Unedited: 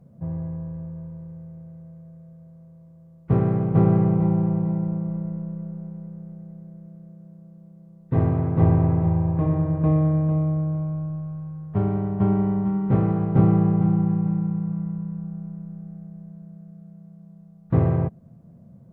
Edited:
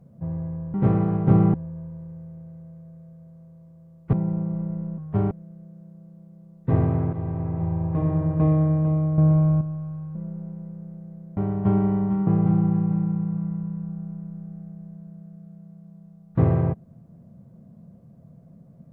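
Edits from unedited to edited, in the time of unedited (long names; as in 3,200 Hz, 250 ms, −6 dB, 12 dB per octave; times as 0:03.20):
0:03.33–0:04.68: remove
0:05.53–0:06.75: swap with 0:11.59–0:11.92
0:08.57–0:09.68: fade in, from −15 dB
0:10.62–0:11.05: clip gain +8.5 dB
0:12.82–0:13.62: move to 0:00.74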